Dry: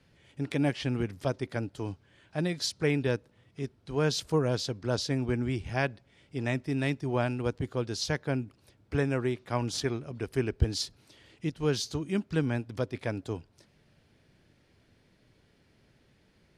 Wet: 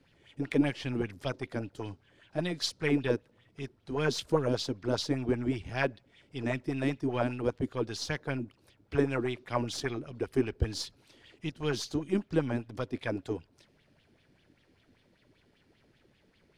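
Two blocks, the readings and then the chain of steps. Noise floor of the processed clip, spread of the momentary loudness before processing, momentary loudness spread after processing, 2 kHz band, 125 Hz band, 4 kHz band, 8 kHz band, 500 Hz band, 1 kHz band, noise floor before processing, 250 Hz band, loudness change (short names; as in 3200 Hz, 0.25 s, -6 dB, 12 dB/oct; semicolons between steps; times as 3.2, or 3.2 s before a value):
-68 dBFS, 10 LU, 11 LU, -1.0 dB, -4.5 dB, -2.0 dB, -4.0 dB, -0.5 dB, -0.5 dB, -66 dBFS, -0.5 dB, -1.0 dB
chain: half-wave gain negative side -3 dB; LFO bell 5.1 Hz 260–3500 Hz +12 dB; gain -3 dB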